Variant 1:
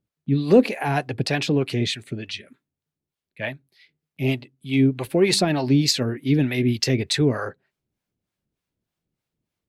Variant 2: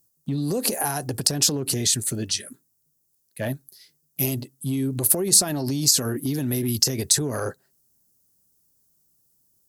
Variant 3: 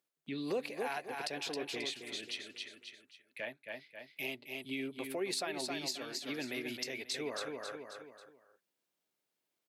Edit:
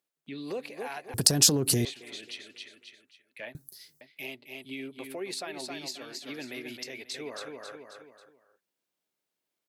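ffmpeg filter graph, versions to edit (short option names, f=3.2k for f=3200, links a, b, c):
-filter_complex "[1:a]asplit=2[a][b];[2:a]asplit=3[c][d][e];[c]atrim=end=1.142[f];[a]atrim=start=1.138:end=1.852[g];[d]atrim=start=1.848:end=3.552[h];[b]atrim=start=3.548:end=4.012[i];[e]atrim=start=4.008[j];[f][g]acrossfade=d=0.004:c1=hsin:c2=hsin[k];[k][h]acrossfade=d=0.004:c1=hsin:c2=hsin[l];[l][i]acrossfade=d=0.004:c1=hsin:c2=hsin[m];[m][j]acrossfade=d=0.004:c1=hsin:c2=hsin"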